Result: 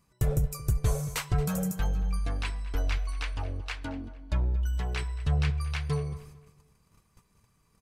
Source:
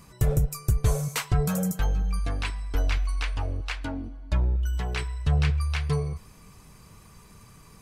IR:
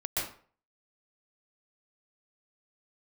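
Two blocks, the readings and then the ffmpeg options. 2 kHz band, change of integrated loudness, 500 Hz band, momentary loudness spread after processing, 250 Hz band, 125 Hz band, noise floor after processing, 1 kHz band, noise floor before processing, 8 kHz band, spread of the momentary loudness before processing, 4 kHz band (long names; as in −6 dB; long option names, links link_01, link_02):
−3.5 dB, −3.5 dB, −3.5 dB, 8 LU, −3.5 dB, −3.5 dB, −68 dBFS, −3.5 dB, −52 dBFS, −3.5 dB, 7 LU, −3.5 dB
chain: -filter_complex "[0:a]agate=range=-14dB:threshold=-47dB:ratio=16:detection=peak,asplit=2[link_01][link_02];[link_02]adelay=226,lowpass=frequency=4400:poles=1,volume=-17dB,asplit=2[link_03][link_04];[link_04]adelay=226,lowpass=frequency=4400:poles=1,volume=0.33,asplit=2[link_05][link_06];[link_06]adelay=226,lowpass=frequency=4400:poles=1,volume=0.33[link_07];[link_03][link_05][link_07]amix=inputs=3:normalize=0[link_08];[link_01][link_08]amix=inputs=2:normalize=0,volume=-3.5dB"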